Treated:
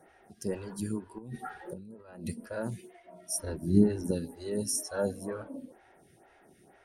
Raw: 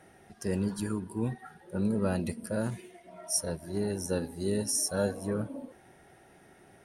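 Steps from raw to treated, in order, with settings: 1.18–2.26 negative-ratio compressor -42 dBFS, ratio -1; 3.39–4.11 resonant low shelf 410 Hz +11.5 dB, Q 1.5; photocell phaser 2.1 Hz

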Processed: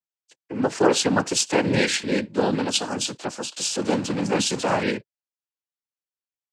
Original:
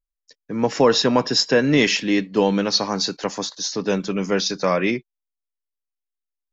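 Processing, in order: 3.56–4.83 zero-crossing step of -25 dBFS; noise vocoder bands 8; gain -3 dB

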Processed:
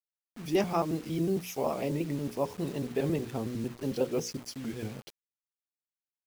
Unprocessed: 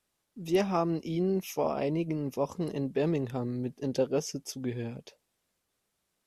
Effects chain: trilling pitch shifter -1.5 st, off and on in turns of 91 ms; notches 60/120/180/240/300/360/420/480/540 Hz; bit-crush 8-bit

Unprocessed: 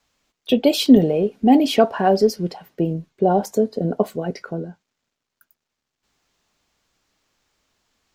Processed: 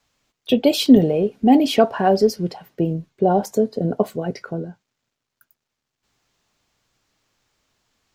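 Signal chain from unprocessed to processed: bell 120 Hz +8 dB 0.32 oct

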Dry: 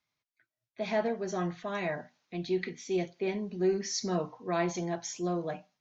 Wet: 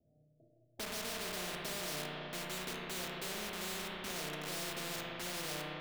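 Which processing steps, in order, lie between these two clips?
steep low-pass 700 Hz 96 dB/oct; reverse; compressor 4:1, threshold -39 dBFS, peak gain reduction 13.5 dB; reverse; limiter -36 dBFS, peak gain reduction 6.5 dB; in parallel at -5.5 dB: requantised 8-bit, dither none; on the sum: resonator 150 Hz, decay 0.34 s, harmonics all, mix 60%; spring tank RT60 1.9 s, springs 33/53 ms, chirp 80 ms, DRR -1 dB; spectral compressor 4:1; gain +1.5 dB

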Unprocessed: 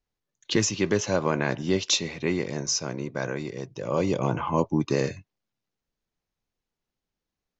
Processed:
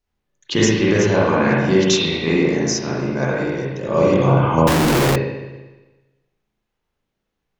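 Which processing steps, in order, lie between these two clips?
spring tank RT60 1.2 s, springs 37/60 ms, chirp 65 ms, DRR -6.5 dB; 4.67–5.16 Schmitt trigger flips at -35 dBFS; gain +2.5 dB

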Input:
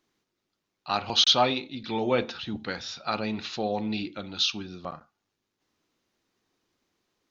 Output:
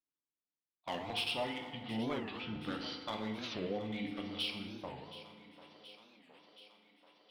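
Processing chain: gate -39 dBFS, range -21 dB; compressor 3:1, threshold -28 dBFS, peak gain reduction 9.5 dB; hard clip -23.5 dBFS, distortion -17 dB; formant shift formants -3 st; on a send: thinning echo 0.725 s, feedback 69%, high-pass 230 Hz, level -15 dB; on the sum: FDN reverb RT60 1.7 s, low-frequency decay 1×, high-frequency decay 0.55×, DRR 3 dB; record warp 45 rpm, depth 250 cents; gain -7.5 dB

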